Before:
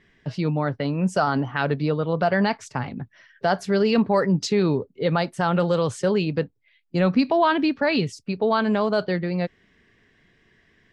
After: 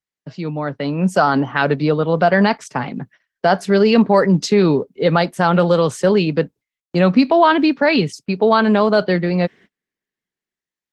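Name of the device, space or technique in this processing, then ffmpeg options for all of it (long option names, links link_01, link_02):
video call: -af "highpass=frequency=150:width=0.5412,highpass=frequency=150:width=1.3066,dynaudnorm=framelen=190:gausssize=9:maxgain=14dB,agate=range=-36dB:threshold=-39dB:ratio=16:detection=peak,volume=-1dB" -ar 48000 -c:a libopus -b:a 20k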